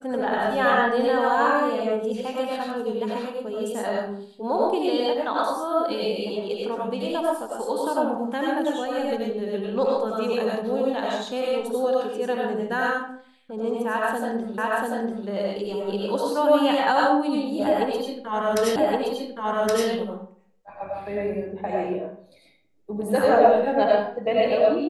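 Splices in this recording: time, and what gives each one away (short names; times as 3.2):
14.58 repeat of the last 0.69 s
18.76 repeat of the last 1.12 s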